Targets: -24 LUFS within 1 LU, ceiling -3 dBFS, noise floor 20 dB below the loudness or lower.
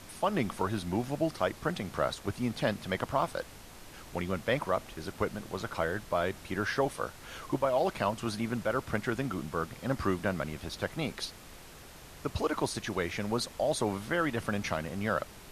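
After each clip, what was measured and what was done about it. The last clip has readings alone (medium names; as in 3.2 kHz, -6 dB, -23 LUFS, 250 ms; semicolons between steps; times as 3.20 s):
dropouts 1; longest dropout 1.6 ms; noise floor -50 dBFS; noise floor target -53 dBFS; loudness -33.0 LUFS; peak level -14.5 dBFS; loudness target -24.0 LUFS
-> interpolate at 3.22 s, 1.6 ms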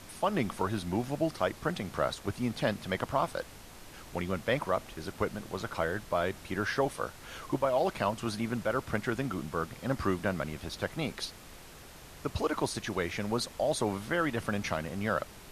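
dropouts 0; noise floor -50 dBFS; noise floor target -53 dBFS
-> noise print and reduce 6 dB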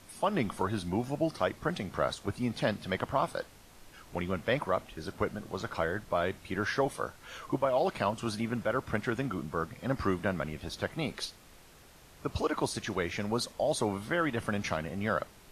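noise floor -56 dBFS; loudness -33.0 LUFS; peak level -14.5 dBFS; loudness target -24.0 LUFS
-> trim +9 dB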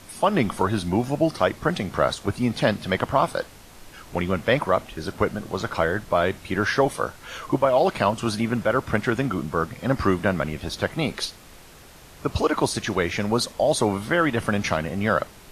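loudness -24.0 LUFS; peak level -5.5 dBFS; noise floor -47 dBFS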